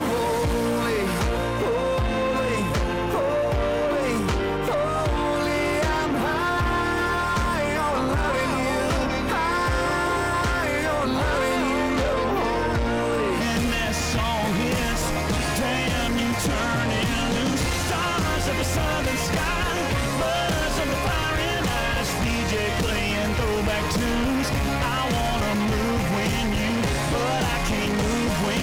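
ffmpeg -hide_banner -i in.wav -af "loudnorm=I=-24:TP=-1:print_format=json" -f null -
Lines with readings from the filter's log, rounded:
"input_i" : "-23.5",
"input_tp" : "-18.7",
"input_lra" : "0.5",
"input_thresh" : "-33.5",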